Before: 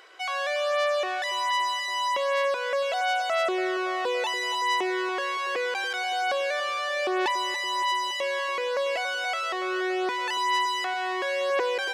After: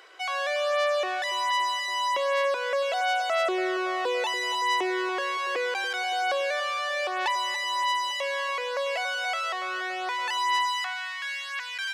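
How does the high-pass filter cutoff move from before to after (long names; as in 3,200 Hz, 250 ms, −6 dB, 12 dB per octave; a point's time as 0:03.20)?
high-pass filter 24 dB per octave
0:06.25 250 Hz
0:06.66 530 Hz
0:10.55 530 Hz
0:11.13 1,400 Hz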